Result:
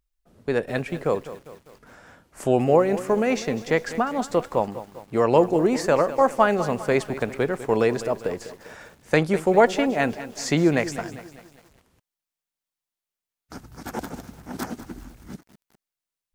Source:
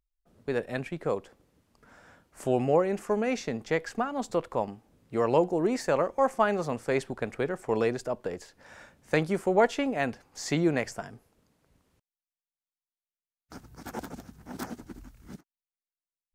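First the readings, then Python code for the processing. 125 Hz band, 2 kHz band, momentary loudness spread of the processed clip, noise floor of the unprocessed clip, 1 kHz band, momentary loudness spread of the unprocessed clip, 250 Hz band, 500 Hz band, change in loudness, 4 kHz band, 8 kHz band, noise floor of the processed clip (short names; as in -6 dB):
+6.5 dB, +6.0 dB, 19 LU, under -85 dBFS, +6.0 dB, 17 LU, +6.0 dB, +6.0 dB, +6.0 dB, +6.0 dB, +6.0 dB, under -85 dBFS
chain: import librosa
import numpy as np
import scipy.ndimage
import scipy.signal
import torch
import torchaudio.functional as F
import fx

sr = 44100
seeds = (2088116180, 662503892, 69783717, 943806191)

y = fx.echo_crushed(x, sr, ms=200, feedback_pct=55, bits=8, wet_db=-14)
y = y * librosa.db_to_amplitude(6.0)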